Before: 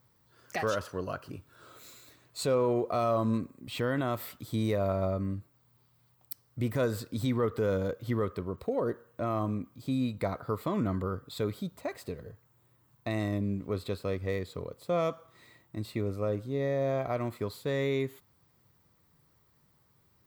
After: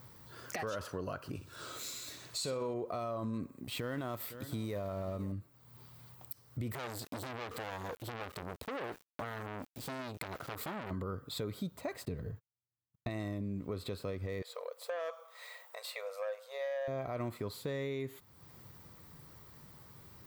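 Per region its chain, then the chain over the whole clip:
0:01.35–0:02.74: parametric band 5,800 Hz +9 dB 1.9 octaves + flutter between parallel walls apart 10.5 metres, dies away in 0.32 s
0:03.64–0:05.32: mu-law and A-law mismatch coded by A + high-shelf EQ 8,300 Hz +5 dB + single-tap delay 508 ms −21 dB
0:06.72–0:10.91: high-shelf EQ 2,500 Hz +8 dB + centre clipping without the shift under −46 dBFS + saturating transformer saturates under 2,400 Hz
0:12.05–0:13.09: noise gate −59 dBFS, range −48 dB + bass and treble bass +7 dB, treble −3 dB + notch filter 530 Hz, Q 8.7
0:14.42–0:16.88: linear-phase brick-wall high-pass 450 Hz + saturating transformer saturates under 920 Hz
whole clip: brickwall limiter −26.5 dBFS; downward compressor 2 to 1, threshold −60 dBFS; level +12 dB

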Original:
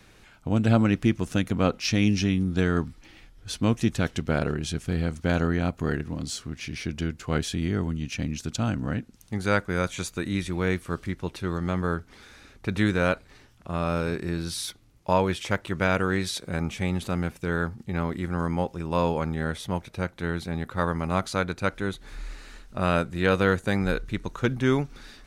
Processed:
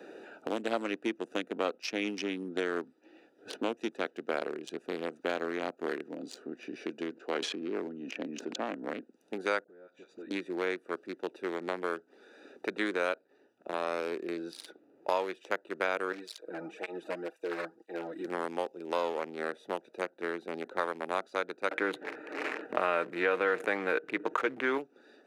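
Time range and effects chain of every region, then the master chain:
0:07.13–0:08.74: high-pass filter 160 Hz + high-frequency loss of the air 85 metres + level that may fall only so fast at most 20 dB per second
0:09.64–0:10.31: low-pass filter 5,200 Hz + downward compressor 8 to 1, threshold −40 dBFS + all-pass dispersion highs, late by 50 ms, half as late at 790 Hz
0:16.12–0:18.25: low-shelf EQ 330 Hz −12 dB + comb filter 6.3 ms, depth 88% + through-zero flanger with one copy inverted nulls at 2 Hz, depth 2.7 ms
0:21.71–0:24.78: high shelf with overshoot 3,200 Hz −11 dB, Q 1.5 + comb filter 6.5 ms, depth 36% + envelope flattener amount 70%
whole clip: adaptive Wiener filter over 41 samples; high-pass filter 350 Hz 24 dB per octave; multiband upward and downward compressor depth 70%; level −3 dB

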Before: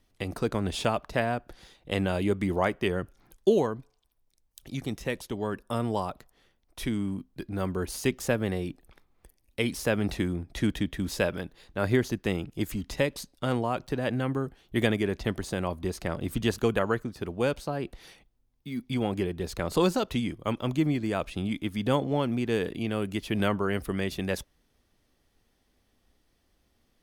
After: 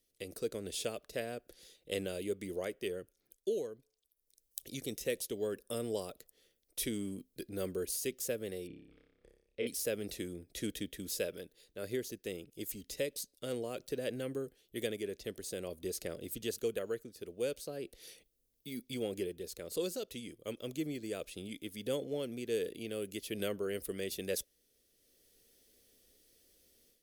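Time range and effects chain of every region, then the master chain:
0:08.67–0:09.67: low-pass filter 2,200 Hz + flutter between parallel walls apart 5.1 metres, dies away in 0.73 s
whole clip: low shelf with overshoot 660 Hz +11 dB, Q 3; automatic gain control; first-order pre-emphasis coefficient 0.97; level −1 dB

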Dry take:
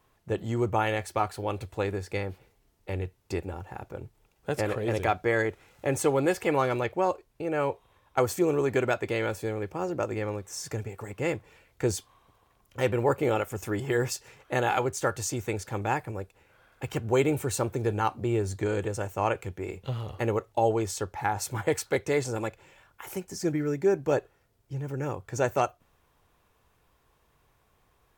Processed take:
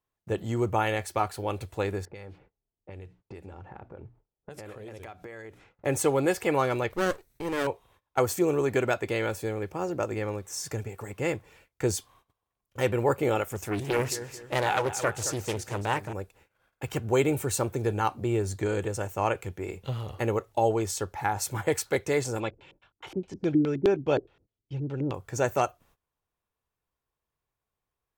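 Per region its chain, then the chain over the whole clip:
0:02.05–0:05.85: mains-hum notches 60/120/180/240/300 Hz + low-pass that shuts in the quiet parts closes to 640 Hz, open at −26.5 dBFS + downward compressor 12 to 1, threshold −39 dBFS
0:06.90–0:07.67: lower of the sound and its delayed copy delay 0.5 ms + high-shelf EQ 6,200 Hz +7.5 dB
0:13.55–0:16.13: repeating echo 221 ms, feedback 36%, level −12.5 dB + highs frequency-modulated by the lows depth 0.56 ms
0:22.40–0:25.14: auto-filter low-pass square 4.8 Hz 310–3,400 Hz + parametric band 1,800 Hz −4.5 dB 0.38 octaves
whole clip: noise gate −58 dBFS, range −21 dB; high-shelf EQ 6,200 Hz +4 dB

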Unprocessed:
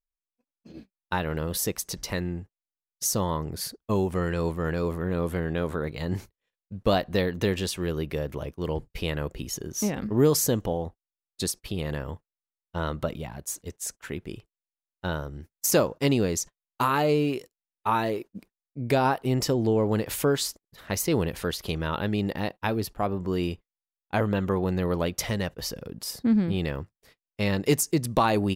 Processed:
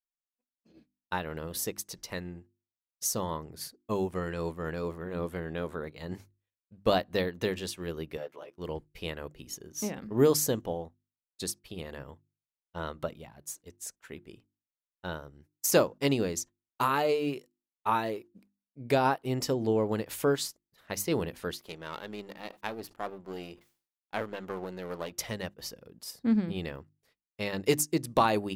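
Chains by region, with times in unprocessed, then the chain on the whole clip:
0:04.81–0:05.28: running median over 3 samples + hum removal 46.49 Hz, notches 6
0:08.17–0:08.58: high-pass filter 420 Hz + high-shelf EQ 7,100 Hz −11 dB + double-tracking delay 12 ms −2.5 dB
0:21.59–0:25.12: gain on one half-wave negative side −12 dB + low-shelf EQ 81 Hz −12 dB + level that may fall only so fast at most 130 dB per second
whole clip: low-shelf EQ 120 Hz −7 dB; mains-hum notches 50/100/150/200/250/300/350 Hz; expander for the loud parts 1.5 to 1, over −44 dBFS

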